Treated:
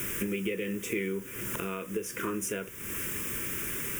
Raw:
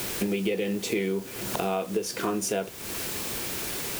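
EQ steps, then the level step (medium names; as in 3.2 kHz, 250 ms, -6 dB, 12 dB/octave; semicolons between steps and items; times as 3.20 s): dynamic bell 190 Hz, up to -4 dB, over -40 dBFS, Q 1; static phaser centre 1.8 kHz, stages 4; 0.0 dB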